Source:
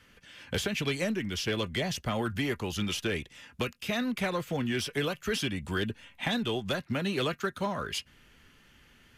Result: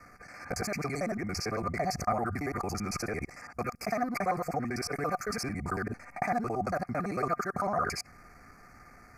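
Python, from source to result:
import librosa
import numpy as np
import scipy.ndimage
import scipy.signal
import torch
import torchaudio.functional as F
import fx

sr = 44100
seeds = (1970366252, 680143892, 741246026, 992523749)

p1 = fx.local_reverse(x, sr, ms=56.0)
p2 = scipy.signal.sosfilt(scipy.signal.ellip(3, 1.0, 40, [2300.0, 4600.0], 'bandstop', fs=sr, output='sos'), p1)
p3 = fx.over_compress(p2, sr, threshold_db=-39.0, ratio=-1.0)
p4 = p2 + (p3 * librosa.db_to_amplitude(2.5))
p5 = fx.high_shelf(p4, sr, hz=8800.0, db=-3.5)
p6 = fx.small_body(p5, sr, hz=(730.0, 1200.0), ring_ms=45, db=17)
y = p6 * librosa.db_to_amplitude(-6.5)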